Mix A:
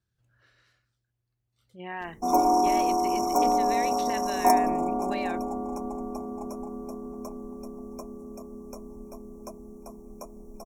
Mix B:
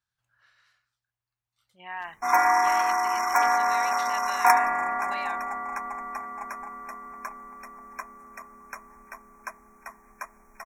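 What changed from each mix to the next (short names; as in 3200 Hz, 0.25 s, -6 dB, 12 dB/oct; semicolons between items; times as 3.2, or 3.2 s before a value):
background: remove Butterworth band-stop 1800 Hz, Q 0.65; master: add resonant low shelf 620 Hz -13.5 dB, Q 1.5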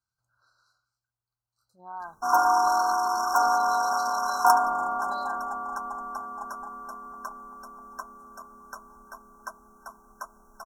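master: add brick-wall FIR band-stop 1600–3900 Hz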